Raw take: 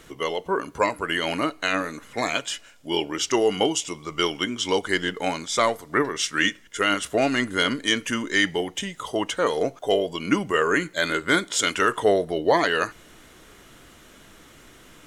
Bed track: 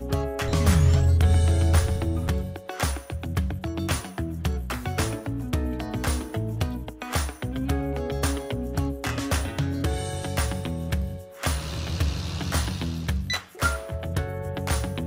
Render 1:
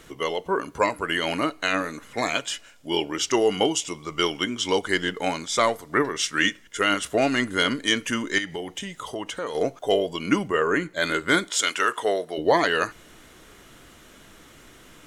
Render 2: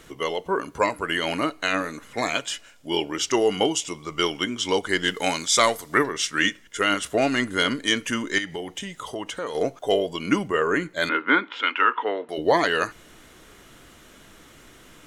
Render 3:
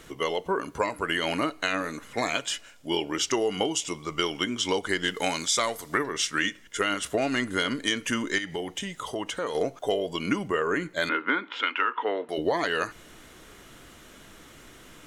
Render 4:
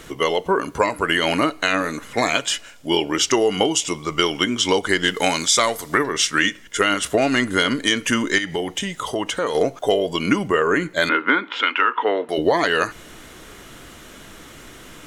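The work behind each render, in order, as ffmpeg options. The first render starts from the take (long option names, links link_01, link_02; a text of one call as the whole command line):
ffmpeg -i in.wav -filter_complex "[0:a]asettb=1/sr,asplit=3[link_01][link_02][link_03];[link_01]atrim=end=8.384[link_04];[link_02]atrim=start=8.38:end=9.55,asetpts=PTS-STARTPTS,afade=type=in:duration=0.004:curve=qsin,afade=type=out:start_time=1.166:duration=0.004:curve=qsin,acompressor=threshold=-30dB:ratio=2.5:attack=3.2:release=140:knee=1:detection=peak[link_05];[link_03]atrim=start=9.546[link_06];[link_04][link_05]acrossfade=duration=0.004:curve1=hsin:curve2=qsin[link_07];[link_07][link_06]acrossfade=duration=0.004:curve1=qsin:curve2=hsin,asplit=3[link_08][link_09][link_10];[link_08]afade=type=out:start_time=10.47:duration=0.02[link_11];[link_09]highshelf=frequency=2500:gain=-8.5,afade=type=in:start_time=10.47:duration=0.02,afade=type=out:start_time=11:duration=0.02[link_12];[link_10]afade=type=in:start_time=11:duration=0.02[link_13];[link_11][link_12][link_13]amix=inputs=3:normalize=0,asettb=1/sr,asplit=3[link_14][link_15][link_16];[link_14]atrim=end=11.504[link_17];[link_15]atrim=start=11.5:end=12.38,asetpts=PTS-STARTPTS,afade=type=in:duration=0.004:curve=qsin,afade=type=out:start_time=0.876:duration=0.004:curve=qsin,highpass=frequency=670:poles=1[link_18];[link_16]atrim=start=12.376[link_19];[link_17][link_18]acrossfade=duration=0.004:curve1=hsin:curve2=qsin[link_20];[link_20][link_19]acrossfade=duration=0.004:curve1=qsin:curve2=hsin" out.wav
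ffmpeg -i in.wav -filter_complex "[0:a]asplit=3[link_01][link_02][link_03];[link_01]afade=type=out:start_time=5.03:duration=0.02[link_04];[link_02]highshelf=frequency=2400:gain=9.5,afade=type=in:start_time=5.03:duration=0.02,afade=type=out:start_time=6.03:duration=0.02[link_05];[link_03]afade=type=in:start_time=6.03:duration=0.02[link_06];[link_04][link_05][link_06]amix=inputs=3:normalize=0,asettb=1/sr,asplit=3[link_07][link_08][link_09];[link_07]atrim=end=11.094[link_10];[link_08]atrim=start=11.09:end=12.29,asetpts=PTS-STARTPTS,afade=type=in:duration=0.004:curve=qsin,afade=type=out:start_time=1.196:duration=0.004:curve=qsin,highpass=frequency=240:width=0.5412,highpass=frequency=240:width=1.3066,equalizer=frequency=260:width_type=q:width=4:gain=6,equalizer=frequency=390:width_type=q:width=4:gain=-4,equalizer=frequency=650:width_type=q:width=4:gain=-9,equalizer=frequency=920:width_type=q:width=4:gain=8,equalizer=frequency=1300:width_type=q:width=4:gain=4,equalizer=frequency=2600:width_type=q:width=4:gain=6,lowpass=frequency=2800:width=0.5412,lowpass=frequency=2800:width=1.3066[link_11];[link_09]atrim=start=12.286[link_12];[link_10][link_11]acrossfade=duration=0.004:curve1=hsin:curve2=qsin[link_13];[link_13][link_12]acrossfade=duration=0.004:curve1=qsin:curve2=hsin" out.wav
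ffmpeg -i in.wav -af "acompressor=threshold=-22dB:ratio=6" out.wav
ffmpeg -i in.wav -af "volume=8dB,alimiter=limit=-3dB:level=0:latency=1" out.wav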